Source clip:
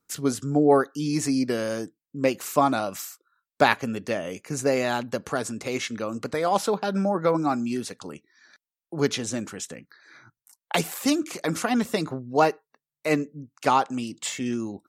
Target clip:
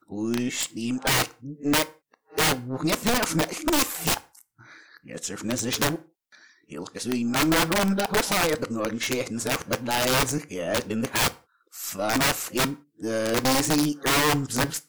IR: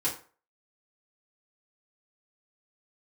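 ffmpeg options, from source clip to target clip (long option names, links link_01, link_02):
-filter_complex "[0:a]areverse,aeval=exprs='(tanh(5.01*val(0)+0.45)-tanh(0.45))/5.01':channel_layout=same,aeval=exprs='(mod(11.2*val(0)+1,2)-1)/11.2':channel_layout=same,asplit=2[link_01][link_02];[1:a]atrim=start_sample=2205,afade=type=out:start_time=0.24:duration=0.01,atrim=end_sample=11025[link_03];[link_02][link_03]afir=irnorm=-1:irlink=0,volume=-18.5dB[link_04];[link_01][link_04]amix=inputs=2:normalize=0,volume=3.5dB"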